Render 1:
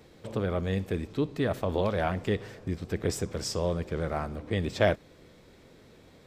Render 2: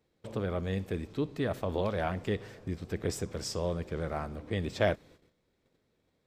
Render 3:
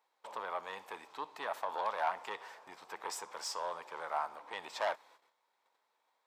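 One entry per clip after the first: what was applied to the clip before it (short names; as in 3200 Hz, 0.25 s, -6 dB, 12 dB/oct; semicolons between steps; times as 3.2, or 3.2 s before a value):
gate -51 dBFS, range -17 dB; gain -3.5 dB
soft clip -25 dBFS, distortion -14 dB; resonant high-pass 920 Hz, resonance Q 4.9; gain -2 dB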